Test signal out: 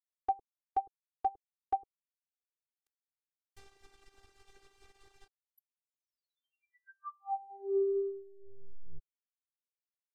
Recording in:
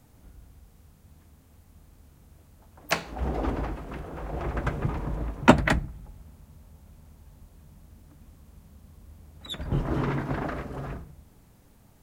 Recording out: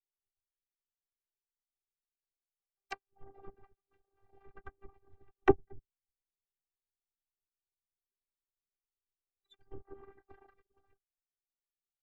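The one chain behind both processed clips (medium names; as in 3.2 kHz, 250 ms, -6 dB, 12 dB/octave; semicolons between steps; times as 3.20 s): reverb removal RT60 0.75 s; robot voice 394 Hz; low-pass that closes with the level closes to 430 Hz, closed at -23 dBFS; upward expansion 2.5:1, over -49 dBFS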